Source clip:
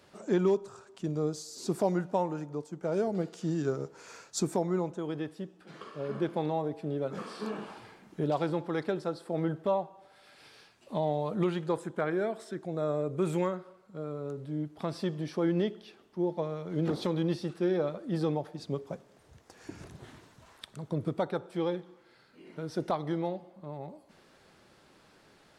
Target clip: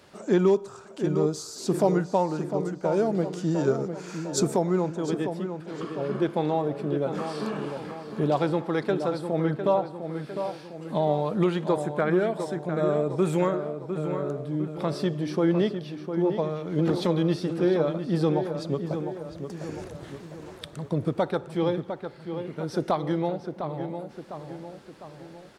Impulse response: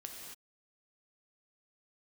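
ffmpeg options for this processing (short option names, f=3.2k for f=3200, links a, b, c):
-filter_complex "[0:a]asplit=2[a][b];[b]adelay=704,lowpass=f=3k:p=1,volume=-8dB,asplit=2[c][d];[d]adelay=704,lowpass=f=3k:p=1,volume=0.52,asplit=2[e][f];[f]adelay=704,lowpass=f=3k:p=1,volume=0.52,asplit=2[g][h];[h]adelay=704,lowpass=f=3k:p=1,volume=0.52,asplit=2[i][j];[j]adelay=704,lowpass=f=3k:p=1,volume=0.52,asplit=2[k][l];[l]adelay=704,lowpass=f=3k:p=1,volume=0.52[m];[a][c][e][g][i][k][m]amix=inputs=7:normalize=0,volume=5.5dB"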